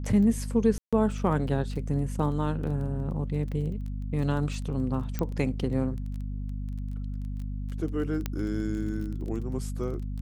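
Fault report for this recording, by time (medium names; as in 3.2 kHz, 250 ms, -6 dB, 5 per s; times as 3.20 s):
crackle 14 per s -35 dBFS
hum 50 Hz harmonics 5 -33 dBFS
0.78–0.93 s: dropout 146 ms
5.19 s: pop -16 dBFS
8.26 s: pop -15 dBFS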